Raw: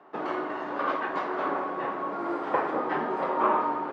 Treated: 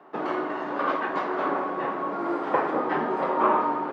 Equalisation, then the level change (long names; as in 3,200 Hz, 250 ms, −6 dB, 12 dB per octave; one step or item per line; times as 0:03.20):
high-pass filter 130 Hz 12 dB per octave
low-shelf EQ 210 Hz +5.5 dB
+2.0 dB